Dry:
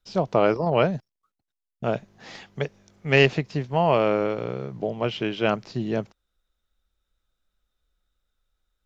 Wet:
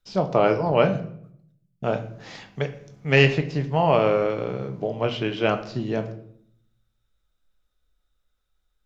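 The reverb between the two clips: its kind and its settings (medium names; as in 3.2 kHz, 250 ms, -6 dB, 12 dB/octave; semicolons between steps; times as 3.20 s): simulated room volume 120 m³, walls mixed, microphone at 0.37 m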